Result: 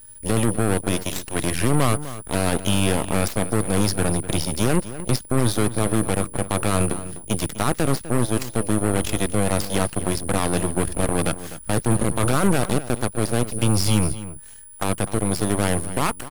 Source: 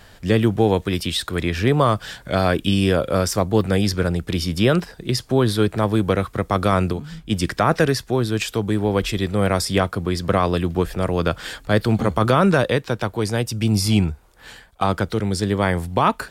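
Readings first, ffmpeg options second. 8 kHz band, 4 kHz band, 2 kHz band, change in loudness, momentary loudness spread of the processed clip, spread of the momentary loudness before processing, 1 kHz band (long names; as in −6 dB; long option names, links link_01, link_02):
+7.5 dB, −3.5 dB, −3.5 dB, −2.5 dB, 6 LU, 6 LU, −4.0 dB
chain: -filter_complex "[0:a]lowshelf=frequency=160:gain=11,alimiter=limit=-7dB:level=0:latency=1:release=11,aeval=exprs='val(0)+0.0398*sin(2*PI*9800*n/s)':channel_layout=same,aeval=exprs='0.501*(cos(1*acos(clip(val(0)/0.501,-1,1)))-cos(1*PI/2))+0.0282*(cos(3*acos(clip(val(0)/0.501,-1,1)))-cos(3*PI/2))+0.112*(cos(4*acos(clip(val(0)/0.501,-1,1)))-cos(4*PI/2))+0.0891*(cos(7*acos(clip(val(0)/0.501,-1,1)))-cos(7*PI/2))+0.0316*(cos(8*acos(clip(val(0)/0.501,-1,1)))-cos(8*PI/2))':channel_layout=same,asplit=2[link_01][link_02];[link_02]adelay=250.7,volume=-14dB,highshelf=frequency=4000:gain=-5.64[link_03];[link_01][link_03]amix=inputs=2:normalize=0,volume=-5.5dB"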